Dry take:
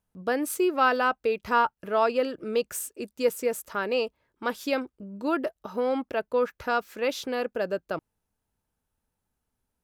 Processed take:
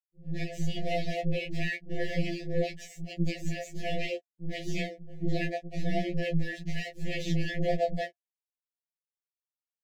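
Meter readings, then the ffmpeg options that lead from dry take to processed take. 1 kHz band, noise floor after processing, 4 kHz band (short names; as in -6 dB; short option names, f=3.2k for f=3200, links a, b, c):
-12.5 dB, under -85 dBFS, -2.0 dB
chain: -filter_complex "[0:a]highshelf=f=4.1k:g=12,alimiter=limit=-20.5dB:level=0:latency=1:release=480,aeval=exprs='val(0)*sin(2*PI*80*n/s)':c=same,dynaudnorm=f=140:g=5:m=8dB,aresample=16000,aeval=exprs='max(val(0),0)':c=same,aresample=44100,acrossover=split=2500[a][b];[b]acompressor=threshold=-43dB:ratio=4:attack=1:release=60[c];[a][c]amix=inputs=2:normalize=0,aeval=exprs='sgn(val(0))*max(abs(val(0))-0.00422,0)':c=same,acrossover=split=350[d][e];[e]adelay=90[f];[d][f]amix=inputs=2:normalize=0,afftfilt=real='re*(1-between(b*sr/4096,740,1700))':imag='im*(1-between(b*sr/4096,740,1700))':win_size=4096:overlap=0.75,flanger=delay=16:depth=2.2:speed=1,lowshelf=f=81:g=-7.5,afftfilt=real='re*2.83*eq(mod(b,8),0)':imag='im*2.83*eq(mod(b,8),0)':win_size=2048:overlap=0.75,volume=7.5dB"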